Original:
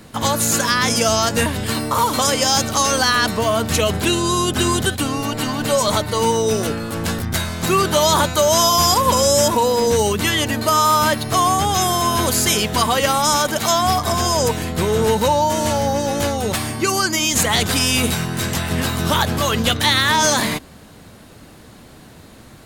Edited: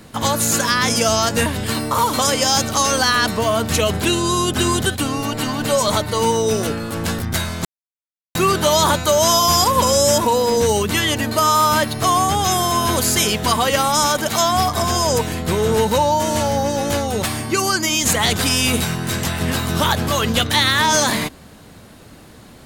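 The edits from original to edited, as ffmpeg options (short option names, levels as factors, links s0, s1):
-filter_complex "[0:a]asplit=2[s0][s1];[s0]atrim=end=7.65,asetpts=PTS-STARTPTS,afade=t=out:st=7.646:d=0.004:c=hsin,apad=pad_dur=0.7[s2];[s1]atrim=start=7.65,asetpts=PTS-STARTPTS,afade=t=in:d=0.004:c=hsin[s3];[s2][s3]concat=n=2:v=0:a=1"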